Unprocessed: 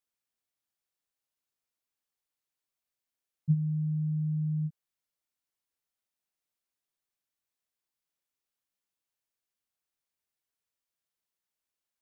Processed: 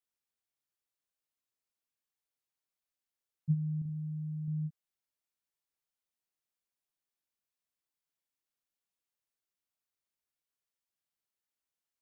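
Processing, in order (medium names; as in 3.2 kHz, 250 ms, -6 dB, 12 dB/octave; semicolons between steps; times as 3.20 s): 3.78–4.48 s: flutter echo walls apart 6.2 m, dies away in 0.45 s; trim -4 dB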